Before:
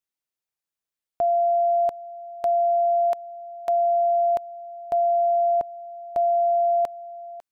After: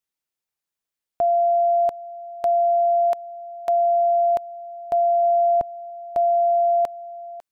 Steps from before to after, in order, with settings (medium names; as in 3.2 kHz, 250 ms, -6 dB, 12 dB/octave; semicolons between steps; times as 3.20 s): 5.23–5.90 s: bass shelf 170 Hz +10 dB; trim +2 dB